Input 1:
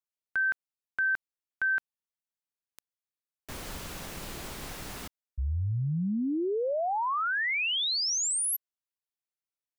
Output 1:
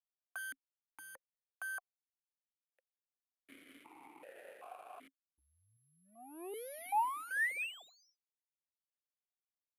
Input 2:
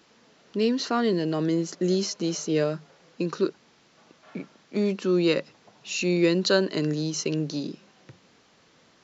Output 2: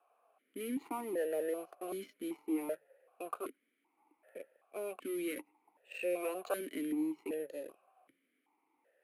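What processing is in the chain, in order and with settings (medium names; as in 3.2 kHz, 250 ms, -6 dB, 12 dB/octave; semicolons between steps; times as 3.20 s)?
three-band isolator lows -22 dB, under 420 Hz, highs -22 dB, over 2 kHz; careless resampling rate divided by 4×, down filtered, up zero stuff; in parallel at -6.5 dB: fuzz box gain 30 dB, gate -33 dBFS; on the sum: stepped vowel filter 2.6 Hz; trim +1 dB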